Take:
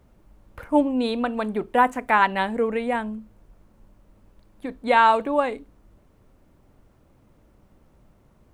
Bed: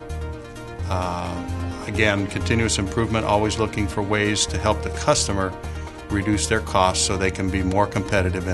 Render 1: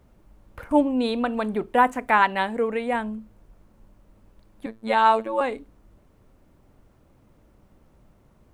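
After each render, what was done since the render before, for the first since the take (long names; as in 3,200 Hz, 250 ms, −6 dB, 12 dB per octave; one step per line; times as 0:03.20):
0:00.71–0:01.55: upward compression, threshold −23 dBFS
0:02.22–0:02.91: low-shelf EQ 180 Hz −6.5 dB
0:04.66–0:05.41: phases set to zero 111 Hz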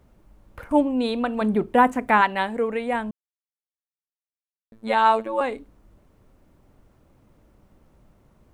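0:01.41–0:02.21: parametric band 160 Hz +7 dB 2.6 octaves
0:03.11–0:04.72: silence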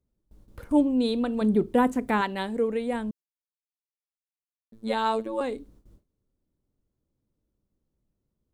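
noise gate with hold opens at −44 dBFS
flat-topped bell 1,300 Hz −9 dB 2.5 octaves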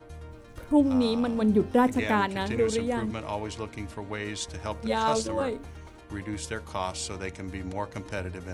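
mix in bed −13.5 dB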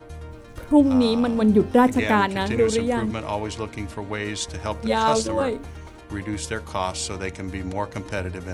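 level +5.5 dB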